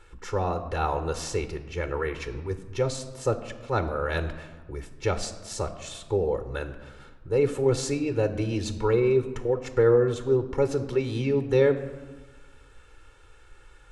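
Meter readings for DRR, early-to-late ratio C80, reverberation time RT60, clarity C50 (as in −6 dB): 10.0 dB, 13.5 dB, 1.4 s, 12.5 dB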